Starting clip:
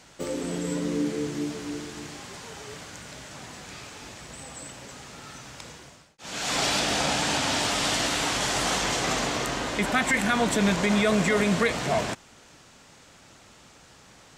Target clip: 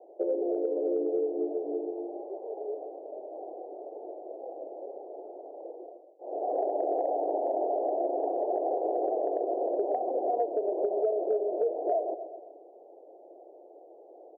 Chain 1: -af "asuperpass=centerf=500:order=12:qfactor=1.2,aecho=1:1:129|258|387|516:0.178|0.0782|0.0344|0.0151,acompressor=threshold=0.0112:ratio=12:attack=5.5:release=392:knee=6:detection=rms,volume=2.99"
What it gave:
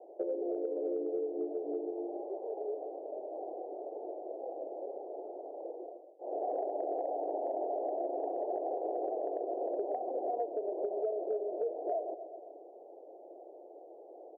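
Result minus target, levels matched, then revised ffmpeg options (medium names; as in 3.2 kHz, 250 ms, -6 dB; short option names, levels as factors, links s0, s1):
compression: peak gain reduction +6.5 dB
-af "asuperpass=centerf=500:order=12:qfactor=1.2,aecho=1:1:129|258|387|516:0.178|0.0782|0.0344|0.0151,acompressor=threshold=0.0251:ratio=12:attack=5.5:release=392:knee=6:detection=rms,volume=2.99"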